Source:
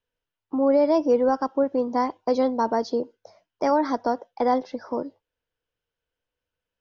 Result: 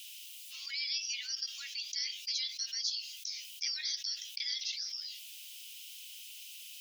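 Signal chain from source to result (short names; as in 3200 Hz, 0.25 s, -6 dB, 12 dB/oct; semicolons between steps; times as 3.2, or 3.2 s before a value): steep high-pass 2500 Hz 48 dB/oct; high shelf 3300 Hz +8 dB; fast leveller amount 70%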